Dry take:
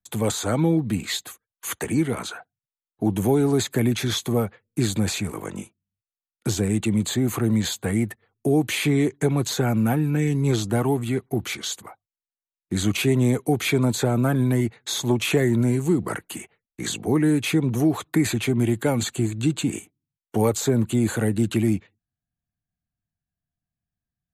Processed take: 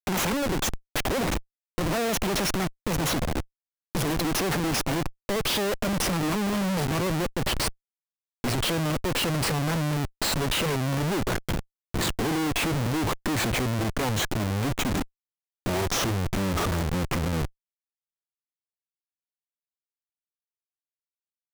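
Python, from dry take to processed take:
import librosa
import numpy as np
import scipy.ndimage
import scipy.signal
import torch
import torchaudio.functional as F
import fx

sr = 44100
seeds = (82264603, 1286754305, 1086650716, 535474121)

y = fx.speed_glide(x, sr, from_pct=175, to_pct=51)
y = fx.schmitt(y, sr, flips_db=-28.5)
y = F.gain(torch.from_numpy(y), -1.5).numpy()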